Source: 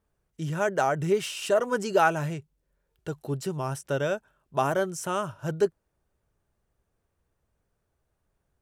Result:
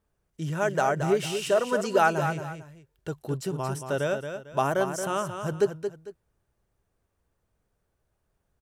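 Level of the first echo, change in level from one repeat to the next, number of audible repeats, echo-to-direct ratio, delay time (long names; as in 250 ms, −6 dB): −8.0 dB, −10.5 dB, 2, −7.5 dB, 225 ms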